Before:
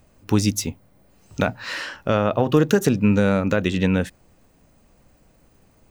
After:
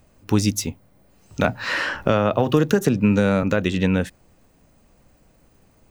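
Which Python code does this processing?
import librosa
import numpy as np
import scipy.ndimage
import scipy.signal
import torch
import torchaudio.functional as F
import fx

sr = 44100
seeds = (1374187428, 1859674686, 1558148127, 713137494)

y = fx.band_squash(x, sr, depth_pct=70, at=(1.44, 3.43))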